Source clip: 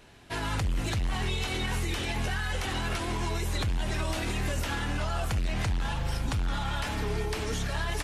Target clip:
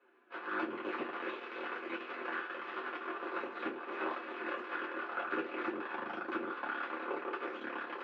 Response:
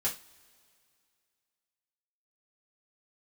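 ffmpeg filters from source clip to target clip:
-filter_complex "[0:a]flanger=delay=7.4:depth=7.4:regen=31:speed=1.4:shape=sinusoidal,aeval=exprs='0.0891*(cos(1*acos(clip(val(0)/0.0891,-1,1)))-cos(1*PI/2))+0.0251*(cos(3*acos(clip(val(0)/0.0891,-1,1)))-cos(3*PI/2))+0.00501*(cos(6*acos(clip(val(0)/0.0891,-1,1)))-cos(6*PI/2))+0.00562*(cos(7*acos(clip(val(0)/0.0891,-1,1)))-cos(7*PI/2))':channel_layout=same,asplit=2[link_01][link_02];[link_02]acrusher=bits=4:mix=0:aa=0.5,volume=-4.5dB[link_03];[link_01][link_03]amix=inputs=2:normalize=0,highpass=frequency=340:width=0.5412,highpass=frequency=340:width=1.3066,equalizer=frequency=390:width_type=q:width=4:gain=9,equalizer=frequency=690:width_type=q:width=4:gain=-7,equalizer=frequency=1400:width_type=q:width=4:gain=7,equalizer=frequency=2100:width_type=q:width=4:gain=-7,lowpass=frequency=2300:width=0.5412,lowpass=frequency=2300:width=1.3066[link_04];[1:a]atrim=start_sample=2205,asetrate=66150,aresample=44100[link_05];[link_04][link_05]afir=irnorm=-1:irlink=0,volume=3dB"

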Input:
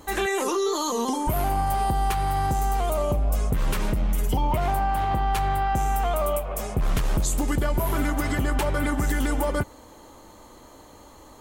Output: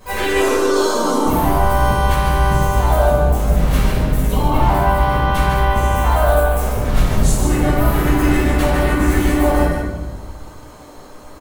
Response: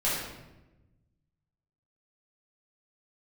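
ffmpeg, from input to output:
-filter_complex "[0:a]aecho=1:1:148:0.501,asplit=4[link_01][link_02][link_03][link_04];[link_02]asetrate=33038,aresample=44100,atempo=1.33484,volume=-12dB[link_05];[link_03]asetrate=55563,aresample=44100,atempo=0.793701,volume=-3dB[link_06];[link_04]asetrate=58866,aresample=44100,atempo=0.749154,volume=-14dB[link_07];[link_01][link_05][link_06][link_07]amix=inputs=4:normalize=0[link_08];[1:a]atrim=start_sample=2205[link_09];[link_08][link_09]afir=irnorm=-1:irlink=0,volume=-5.5dB"

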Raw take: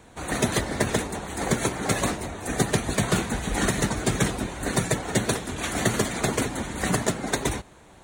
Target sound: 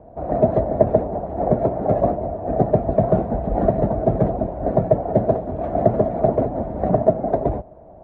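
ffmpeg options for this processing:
ffmpeg -i in.wav -af "lowpass=frequency=650:width_type=q:width=7.5,lowshelf=frequency=260:gain=7,volume=-1dB" out.wav

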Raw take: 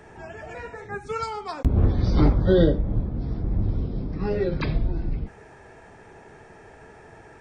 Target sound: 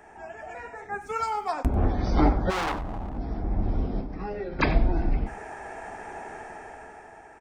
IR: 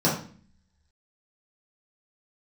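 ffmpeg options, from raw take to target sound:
-filter_complex "[0:a]dynaudnorm=framelen=210:gausssize=11:maxgain=13.5dB,asettb=1/sr,asplit=3[link_01][link_02][link_03];[link_01]atrim=end=1.014[link_04];[link_02]atrim=start=1.01:end=1.5,asetpts=PTS-STARTPTS,afade=type=in:duration=0.004:curve=qsin,afade=type=out:start_time=0.486:duration=0.004:curve=qsin,aeval=exprs='sgn(val(0))*max(abs(val(0))-0.00168,0)':channel_layout=same[link_05];[link_03]atrim=start=1.496[link_06];[link_04][link_05]acrossfade=duration=0.004:curve1=hsin:curve2=qsin[link_07];[link_07][link_06]acrossfade=duration=0.004:curve1=qsin:curve2=hsin,equalizer=frequency=125:width_type=o:width=1:gain=-10,equalizer=frequency=250:width_type=o:width=1:gain=3,equalizer=frequency=500:width_type=o:width=1:gain=7,equalizer=frequency=1000:width_type=o:width=1:gain=-7,equalizer=frequency=4000:width_type=o:width=1:gain=-10,asplit=3[link_08][link_09][link_10];[link_08]afade=type=out:start_time=2.49:duration=0.02[link_11];[link_09]asoftclip=type=hard:threshold=-23dB,afade=type=in:start_time=2.49:duration=0.02,afade=type=out:start_time=3.16:duration=0.02[link_12];[link_10]afade=type=in:start_time=3.16:duration=0.02[link_13];[link_11][link_12][link_13]amix=inputs=3:normalize=0,lowshelf=frequency=630:width_type=q:width=3:gain=-7,aecho=1:1:94:0.158,asettb=1/sr,asplit=3[link_14][link_15][link_16];[link_14]atrim=end=4.004[link_17];[link_15]atrim=start=4:end=4.59,asetpts=PTS-STARTPTS,afade=type=in:duration=0.004:curve=qsin,afade=type=out:start_time=0.586:duration=0.004:curve=qsin,acompressor=threshold=-32dB:ratio=5[link_18];[link_16]atrim=start=4.586[link_19];[link_17][link_18]acrossfade=duration=0.004:curve1=hsin:curve2=qsin[link_20];[link_20][link_19]acrossfade=duration=0.004:curve1=qsin:curve2=hsin"

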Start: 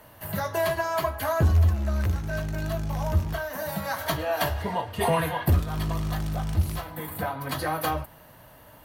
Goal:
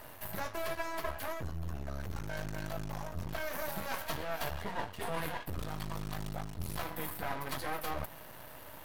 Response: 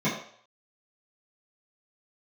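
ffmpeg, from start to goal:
-af "areverse,acompressor=threshold=-35dB:ratio=10,areverse,lowshelf=frequency=250:gain=-5,aeval=exprs='max(val(0),0)':channel_layout=same,volume=6dB"

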